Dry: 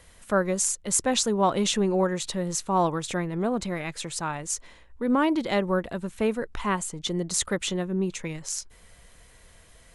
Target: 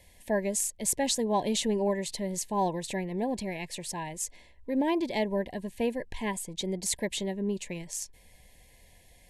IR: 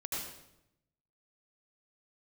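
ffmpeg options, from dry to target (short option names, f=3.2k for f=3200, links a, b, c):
-af "asetrate=47187,aresample=44100,asuperstop=centerf=1300:order=20:qfactor=2.2,volume=-4dB"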